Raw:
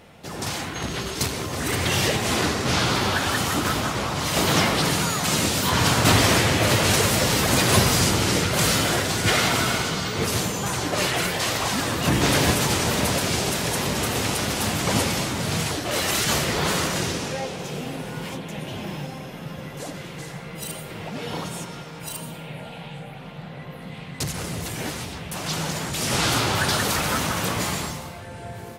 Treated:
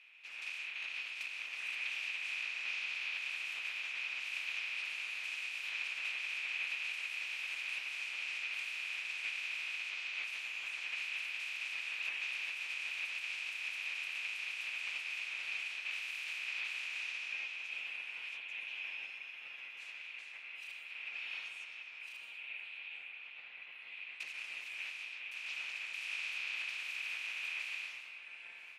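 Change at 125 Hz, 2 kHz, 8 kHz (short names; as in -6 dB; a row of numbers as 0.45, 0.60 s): under -40 dB, -10.0 dB, -30.0 dB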